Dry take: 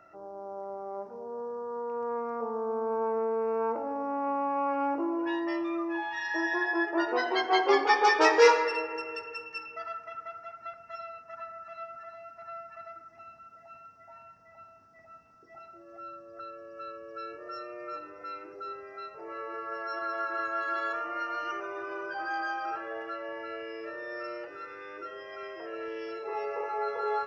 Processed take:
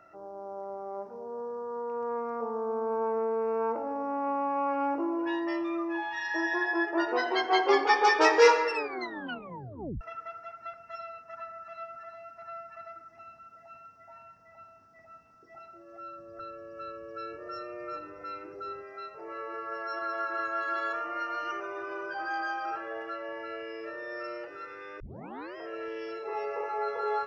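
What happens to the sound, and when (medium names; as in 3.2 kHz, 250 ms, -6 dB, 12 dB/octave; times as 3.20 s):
8.72 s: tape stop 1.29 s
16.18–18.82 s: bass shelf 180 Hz +11 dB
25.00 s: tape start 0.56 s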